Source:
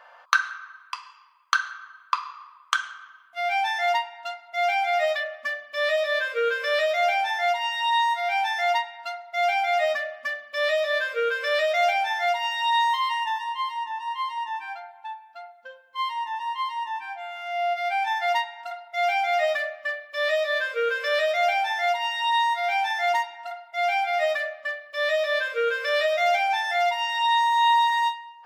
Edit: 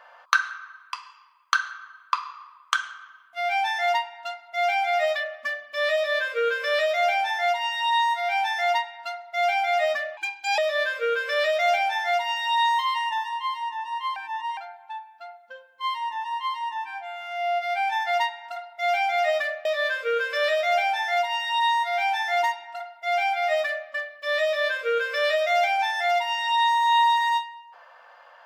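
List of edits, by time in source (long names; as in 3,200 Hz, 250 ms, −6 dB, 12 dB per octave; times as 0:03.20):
0:10.17–0:10.73: play speed 136%
0:14.31–0:14.72: reverse
0:19.80–0:20.36: remove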